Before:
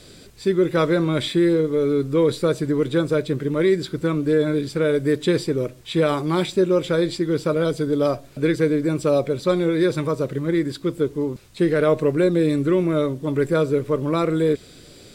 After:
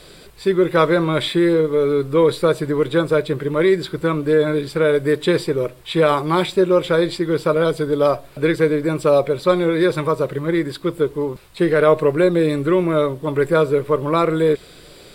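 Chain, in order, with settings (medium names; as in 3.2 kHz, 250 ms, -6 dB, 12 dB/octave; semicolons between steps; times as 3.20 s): fifteen-band graphic EQ 100 Hz -10 dB, 250 Hz -9 dB, 1 kHz +4 dB, 6.3 kHz -9 dB; trim +5 dB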